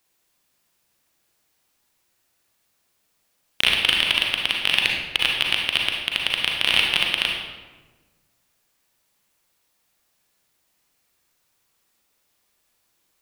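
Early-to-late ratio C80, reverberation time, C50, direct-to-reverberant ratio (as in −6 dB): 4.0 dB, 1.3 s, 1.5 dB, −0.5 dB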